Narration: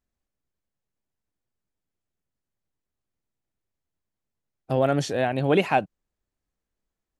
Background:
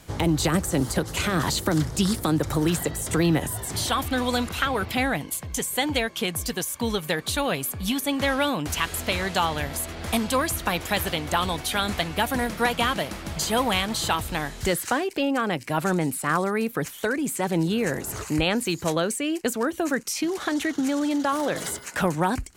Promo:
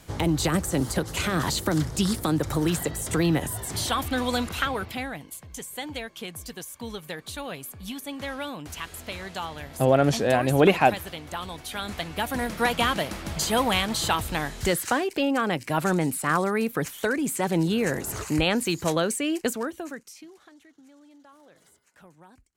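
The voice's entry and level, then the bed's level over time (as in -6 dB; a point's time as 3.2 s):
5.10 s, +2.5 dB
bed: 4.63 s -1.5 dB
5.11 s -10 dB
11.51 s -10 dB
12.73 s 0 dB
19.44 s 0 dB
20.59 s -29 dB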